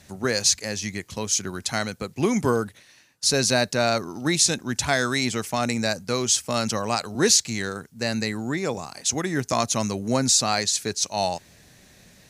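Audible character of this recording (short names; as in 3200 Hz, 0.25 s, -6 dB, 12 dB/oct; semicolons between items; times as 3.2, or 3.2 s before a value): noise floor -54 dBFS; spectral tilt -2.5 dB/oct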